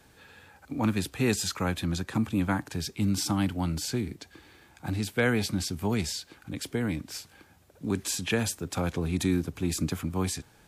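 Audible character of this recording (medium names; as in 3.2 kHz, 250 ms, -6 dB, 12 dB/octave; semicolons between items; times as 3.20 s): noise floor -59 dBFS; spectral tilt -4.5 dB/octave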